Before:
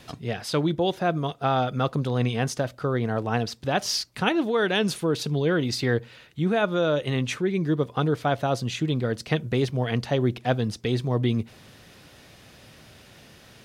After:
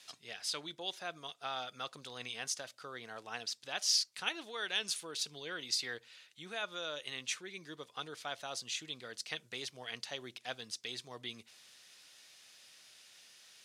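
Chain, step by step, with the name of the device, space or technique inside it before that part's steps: piezo pickup straight into a mixer (low-pass 7.7 kHz 12 dB/octave; differentiator); trim +1 dB

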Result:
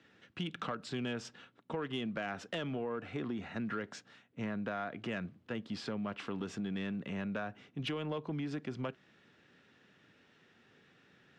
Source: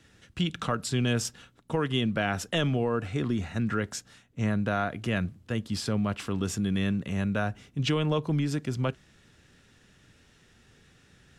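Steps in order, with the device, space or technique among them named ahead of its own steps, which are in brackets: AM radio (band-pass 200–3300 Hz; compression 4:1, threshold -31 dBFS, peak gain reduction 7 dB; saturation -24.5 dBFS, distortion -22 dB); trim -2.5 dB

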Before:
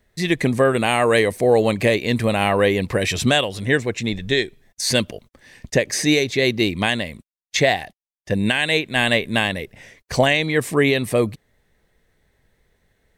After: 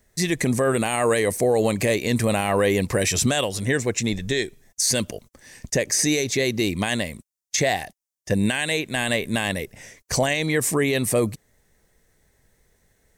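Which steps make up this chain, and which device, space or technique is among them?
over-bright horn tweeter (resonant high shelf 4.8 kHz +7.5 dB, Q 1.5; peak limiter -11 dBFS, peak gain reduction 9 dB)

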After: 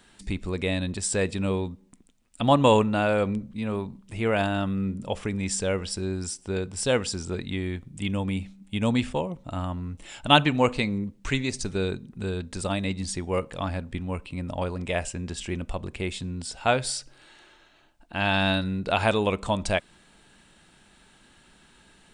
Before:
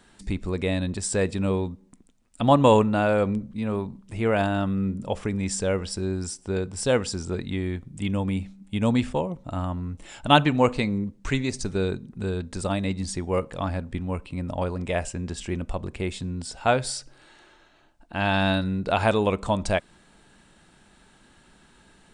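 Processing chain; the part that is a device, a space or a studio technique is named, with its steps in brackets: presence and air boost (peaking EQ 2.9 kHz +4.5 dB 1.3 oct; treble shelf 9.1 kHz +6 dB); trim -2 dB

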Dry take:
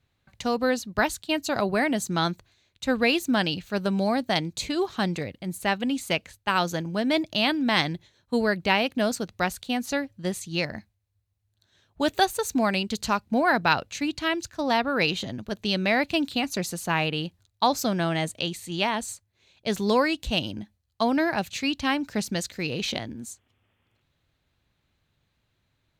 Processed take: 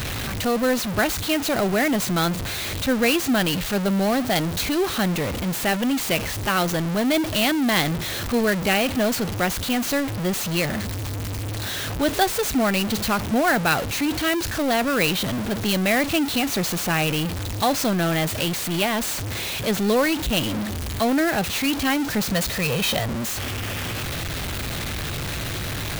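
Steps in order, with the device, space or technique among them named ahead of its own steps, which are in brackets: band-stop 950 Hz, Q 5; 22.32–23.26 s: comb 1.6 ms, depth 83%; early CD player with a faulty converter (jump at every zero crossing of -22 dBFS; sampling jitter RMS 0.026 ms)

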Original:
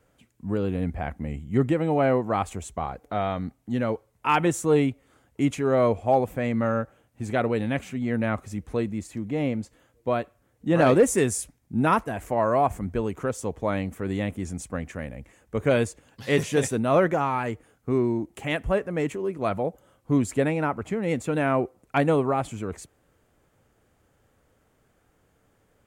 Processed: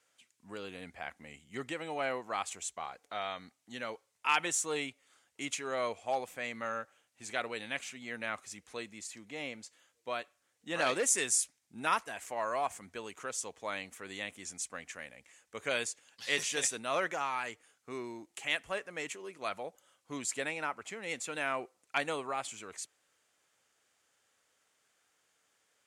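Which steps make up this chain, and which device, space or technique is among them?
piezo pickup straight into a mixer (low-pass 6 kHz 12 dB/octave; differentiator); trim +8 dB

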